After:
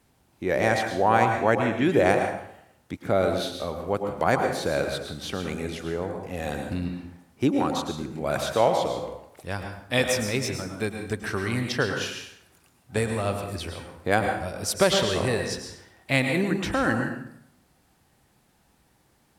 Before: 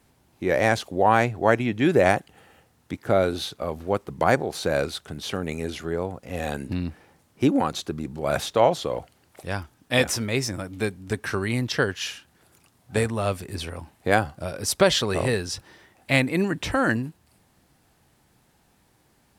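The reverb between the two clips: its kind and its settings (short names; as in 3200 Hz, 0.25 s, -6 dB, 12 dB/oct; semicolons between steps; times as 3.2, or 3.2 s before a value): plate-style reverb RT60 0.7 s, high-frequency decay 0.75×, pre-delay 95 ms, DRR 4 dB; gain -2.5 dB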